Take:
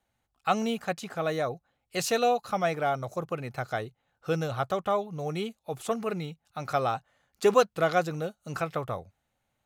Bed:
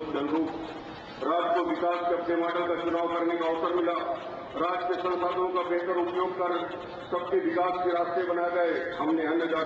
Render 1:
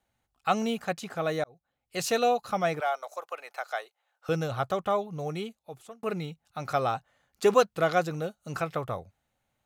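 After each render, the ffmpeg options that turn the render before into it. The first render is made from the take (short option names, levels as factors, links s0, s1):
-filter_complex "[0:a]asettb=1/sr,asplit=3[s0][s1][s2];[s0]atrim=end=2.804[s3];[s1]atrim=start=2.8:end=4.29,asetpts=PTS-STARTPTS,afade=t=in:d=0.004:c=qsin,afade=t=out:st=1.486:d=0.004:c=qsin,highpass=f=600:w=0.5412,highpass=f=600:w=1.3066[s4];[s2]atrim=start=4.286[s5];[s3][s4]acrossfade=d=0.004:c1=hsin:c2=qsin[s6];[s6][s5]acrossfade=d=0.004:c1=qsin:c2=hsin,asplit=3[s7][s8][s9];[s7]atrim=end=1.44,asetpts=PTS-STARTPTS,afade=t=out:st=1.436:d=0.004:c=hsin[s10];[s8]atrim=start=1.44:end=6.03,asetpts=PTS-STARTPTS,afade=t=in:d=0.68,afade=t=out:st=3.76:d=0.83[s11];[s9]atrim=start=6.03,asetpts=PTS-STARTPTS,afade=t=in:d=0.004:c=hsin[s12];[s10][s11][s12]concat=n=3:v=0:a=1"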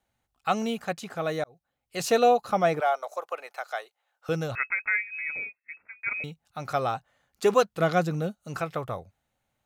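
-filter_complex "[0:a]asettb=1/sr,asplit=3[s0][s1][s2];[s0]atrim=end=2.004[s3];[s1]atrim=start=2:end=3.47,asetpts=PTS-STARTPTS,afade=t=in:d=0.004:c=qsin,afade=t=out:st=1.466:d=0.004:c=qsin,equalizer=f=450:w=0.38:g=5[s4];[s2]atrim=start=3.466[s5];[s3][s4]acrossfade=d=0.004:c1=hsin:c2=qsin[s6];[s6][s5]acrossfade=d=0.004:c1=qsin:c2=hsin,asettb=1/sr,asplit=3[s7][s8][s9];[s7]atrim=end=4.554[s10];[s8]atrim=start=4.55:end=6.24,asetpts=PTS-STARTPTS,afade=t=in:d=0.004:c=qsin,afade=t=out:st=1.686:d=0.004:c=qsin,lowpass=f=2300:t=q:w=0.5098,lowpass=f=2300:t=q:w=0.6013,lowpass=f=2300:t=q:w=0.9,lowpass=f=2300:t=q:w=2.563,afreqshift=-2700[s11];[s9]atrim=start=6.236[s12];[s10][s11]acrossfade=d=0.004:c1=hsin:c2=qsin[s13];[s13][s12]acrossfade=d=0.004:c1=qsin:c2=hsin,asettb=1/sr,asplit=3[s14][s15][s16];[s14]atrim=end=7.804[s17];[s15]atrim=start=7.8:end=8.35,asetpts=PTS-STARTPTS,afade=t=in:d=0.004:c=qsin,afade=t=out:st=0.546:d=0.004:c=qsin,equalizer=f=200:w=1.5:g=9.5[s18];[s16]atrim=start=8.346[s19];[s17][s18]acrossfade=d=0.004:c1=hsin:c2=qsin[s20];[s20][s19]acrossfade=d=0.004:c1=qsin:c2=hsin"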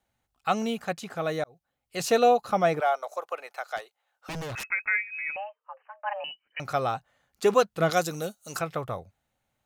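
-filter_complex "[0:a]asplit=3[s0][s1][s2];[s0]afade=t=out:st=3.76:d=0.02[s3];[s1]aeval=exprs='0.0316*(abs(mod(val(0)/0.0316+3,4)-2)-1)':c=same,afade=t=in:st=3.76:d=0.02,afade=t=out:st=4.64:d=0.02[s4];[s2]afade=t=in:st=4.64:d=0.02[s5];[s3][s4][s5]amix=inputs=3:normalize=0,asettb=1/sr,asplit=3[s6][s7][s8];[s6]atrim=end=5.364[s9];[s7]atrim=start=5.36:end=6.6,asetpts=PTS-STARTPTS,afade=t=in:d=0.004:c=qsin,afade=t=out:st=1.236:d=0.004:c=qsin,lowpass=f=2600:t=q:w=0.5098,lowpass=f=2600:t=q:w=0.6013,lowpass=f=2600:t=q:w=0.9,lowpass=f=2600:t=q:w=2.563,afreqshift=-3100[s10];[s8]atrim=start=6.596[s11];[s9][s10]acrossfade=d=0.004:c1=hsin:c2=qsin[s12];[s12][s11]acrossfade=d=0.004:c1=qsin:c2=hsin,asettb=1/sr,asplit=3[s13][s14][s15];[s13]atrim=end=7.904[s16];[s14]atrim=start=7.9:end=8.59,asetpts=PTS-STARTPTS,afade=t=in:d=0.004:c=qsin,afade=t=out:st=0.686:d=0.004:c=qsin,bass=f=250:g=-10,treble=f=4000:g=14[s17];[s15]atrim=start=8.586[s18];[s16][s17]acrossfade=d=0.004:c1=hsin:c2=qsin[s19];[s19][s18]acrossfade=d=0.004:c1=qsin:c2=hsin"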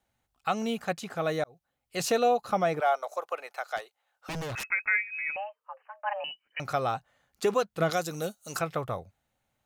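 -af "alimiter=limit=0.168:level=0:latency=1:release=270"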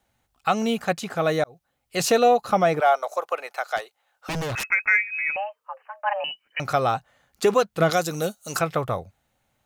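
-af "acontrast=78"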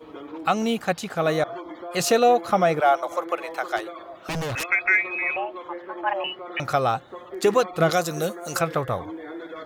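-filter_complex "[1:a]volume=0.335[s0];[0:a][s0]amix=inputs=2:normalize=0"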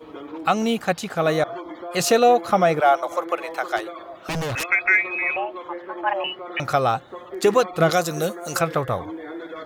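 -af "volume=1.26"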